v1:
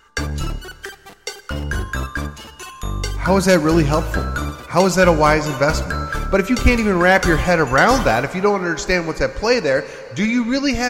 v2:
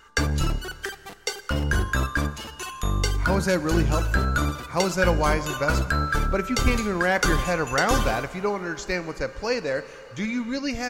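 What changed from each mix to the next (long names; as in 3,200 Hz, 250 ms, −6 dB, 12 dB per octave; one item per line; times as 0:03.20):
speech −9.5 dB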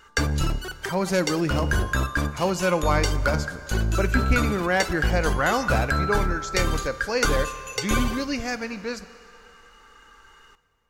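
speech: entry −2.35 s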